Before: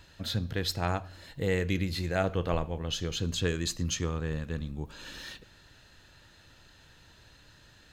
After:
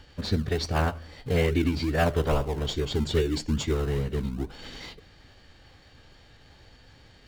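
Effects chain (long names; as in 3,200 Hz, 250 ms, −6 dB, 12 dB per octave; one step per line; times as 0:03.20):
Bessel low-pass filter 4,000 Hz, order 2
phase-vocoder pitch shift with formants kept −3.5 semitones
in parallel at −9 dB: sample-and-hold swept by an LFO 33×, swing 60% 2.2 Hz
on the sum: wrong playback speed 44.1 kHz file played as 48 kHz
level +3.5 dB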